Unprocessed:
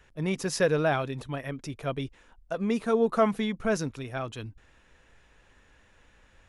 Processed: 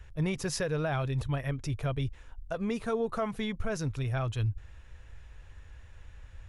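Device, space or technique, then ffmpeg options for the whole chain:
car stereo with a boomy subwoofer: -af "lowshelf=frequency=140:width_type=q:width=1.5:gain=13,alimiter=limit=-21.5dB:level=0:latency=1:release=309"

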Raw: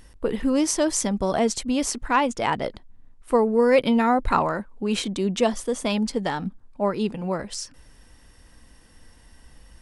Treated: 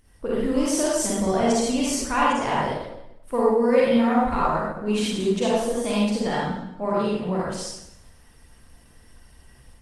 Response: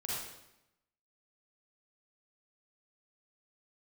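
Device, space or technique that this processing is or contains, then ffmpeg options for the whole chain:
speakerphone in a meeting room: -filter_complex "[1:a]atrim=start_sample=2205[link_01];[0:a][link_01]afir=irnorm=-1:irlink=0,dynaudnorm=framelen=130:gausssize=3:maxgain=5dB,volume=-5.5dB" -ar 48000 -c:a libopus -b:a 24k

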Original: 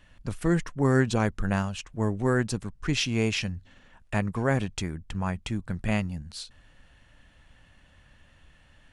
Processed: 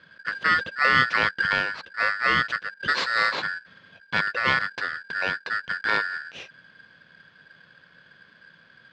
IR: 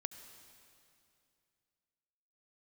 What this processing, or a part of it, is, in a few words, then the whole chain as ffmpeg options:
ring modulator pedal into a guitar cabinet: -filter_complex "[0:a]aeval=exprs='val(0)*sgn(sin(2*PI*1600*n/s))':channel_layout=same,highpass=81,equalizer=frequency=170:width_type=q:width=4:gain=5,equalizer=frequency=510:width_type=q:width=4:gain=7,equalizer=frequency=830:width_type=q:width=4:gain=-4,lowpass=frequency=3900:width=0.5412,lowpass=frequency=3900:width=1.3066,asettb=1/sr,asplit=3[link_01][link_02][link_03];[link_01]atrim=end=2.744[link_04];[link_02]atrim=start=2.74:end=3.32,asetpts=PTS-STARTPTS,afade=type=in:duration=0.004:curve=qsin,afade=type=out:start_time=0.576:duration=0.004:curve=qsin,adynamicequalizer=threshold=0.0112:dfrequency=3700:dqfactor=0.7:tfrequency=3700:tqfactor=0.7:attack=5:release=100:ratio=0.375:range=3:mode=boostabove:tftype=highshelf[link_05];[link_03]atrim=start=3.316[link_06];[link_04][link_05]acrossfade=duration=0.004:curve1=hsin:curve2=qsin[link_07];[link_07][link_06]acrossfade=duration=0.004:curve1=qsin:curve2=hsin,volume=3dB"

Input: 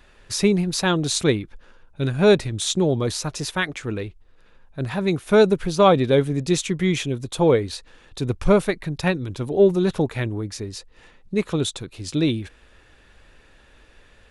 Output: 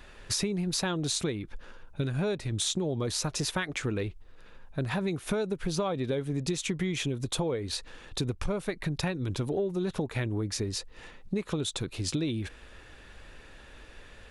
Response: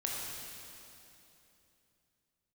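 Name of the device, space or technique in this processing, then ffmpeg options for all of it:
serial compression, peaks first: -af "acompressor=threshold=-25dB:ratio=6,acompressor=threshold=-31dB:ratio=2.5,volume=2.5dB"

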